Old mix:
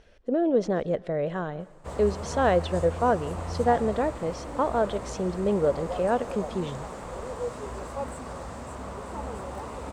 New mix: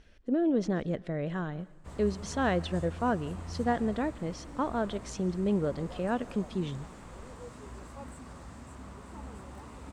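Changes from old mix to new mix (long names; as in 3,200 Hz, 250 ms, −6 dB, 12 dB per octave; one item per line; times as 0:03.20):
background −6.0 dB
master: add drawn EQ curve 300 Hz 0 dB, 500 Hz −10 dB, 1,800 Hz −2 dB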